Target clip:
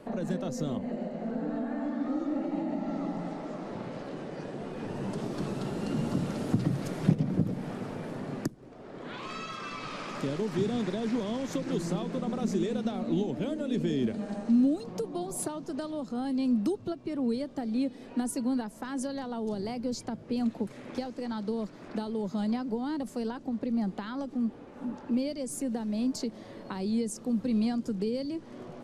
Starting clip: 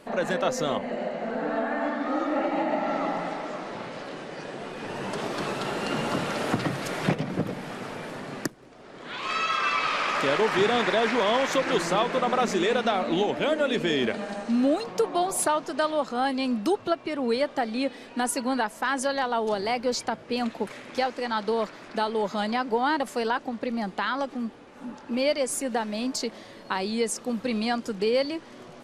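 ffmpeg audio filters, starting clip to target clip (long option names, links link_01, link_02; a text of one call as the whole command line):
ffmpeg -i in.wav -filter_complex "[0:a]tiltshelf=frequency=970:gain=6,acrossover=split=290|4200[link_01][link_02][link_03];[link_02]acompressor=threshold=-37dB:ratio=6[link_04];[link_01][link_04][link_03]amix=inputs=3:normalize=0,volume=-2dB" out.wav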